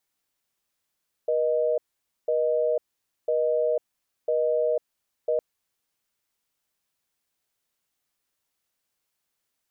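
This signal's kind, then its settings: call progress tone busy tone, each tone -23.5 dBFS 4.11 s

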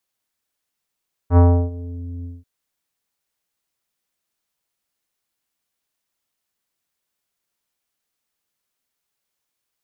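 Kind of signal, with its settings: synth note square F2 24 dB/oct, low-pass 310 Hz, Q 1, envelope 2 oct, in 0.75 s, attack 70 ms, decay 0.33 s, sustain -21 dB, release 0.20 s, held 0.94 s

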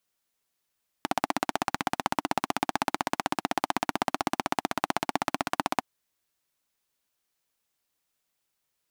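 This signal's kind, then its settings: single-cylinder engine model, steady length 4.77 s, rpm 1900, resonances 290/770 Hz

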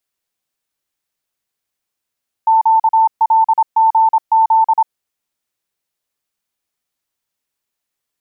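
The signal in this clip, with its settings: Morse "QLGZ" 26 wpm 891 Hz -7.5 dBFS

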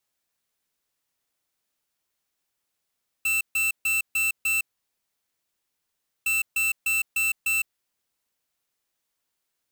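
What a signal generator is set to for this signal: beep pattern square 2670 Hz, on 0.16 s, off 0.14 s, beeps 5, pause 1.65 s, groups 2, -23.5 dBFS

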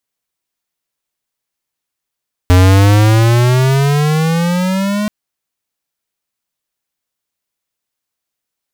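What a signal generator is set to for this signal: gliding synth tone square, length 2.58 s, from 89.3 Hz, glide +15 st, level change -10 dB, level -6 dB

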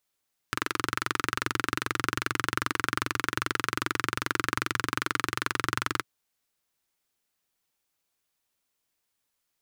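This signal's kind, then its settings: single-cylinder engine model, steady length 5.51 s, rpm 2700, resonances 120/310/1300 Hz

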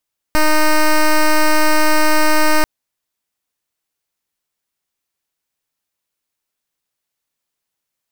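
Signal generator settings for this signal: pulse 308 Hz, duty 9% -11 dBFS 2.29 s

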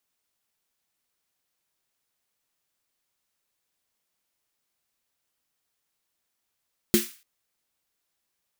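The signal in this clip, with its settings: snare drum length 0.29 s, tones 220 Hz, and 350 Hz, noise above 1500 Hz, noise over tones -6 dB, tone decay 0.18 s, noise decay 0.39 s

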